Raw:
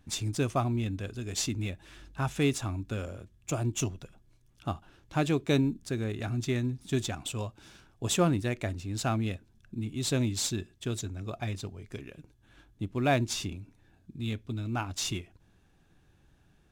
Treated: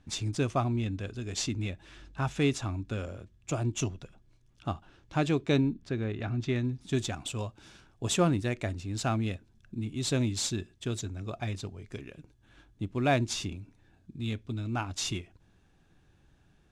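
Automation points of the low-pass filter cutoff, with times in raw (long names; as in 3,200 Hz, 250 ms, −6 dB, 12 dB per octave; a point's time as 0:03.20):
0:05.35 7,200 Hz
0:05.83 3,500 Hz
0:06.38 3,500 Hz
0:07.03 9,400 Hz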